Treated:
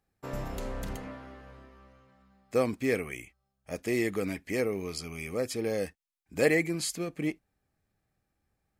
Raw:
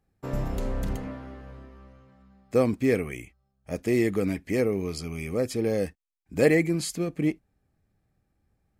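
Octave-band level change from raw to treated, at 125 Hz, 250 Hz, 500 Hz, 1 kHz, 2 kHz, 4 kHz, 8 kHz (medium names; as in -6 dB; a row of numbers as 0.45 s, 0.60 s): -8.0 dB, -6.5 dB, -4.5 dB, -2.0 dB, -0.5 dB, 0.0 dB, 0.0 dB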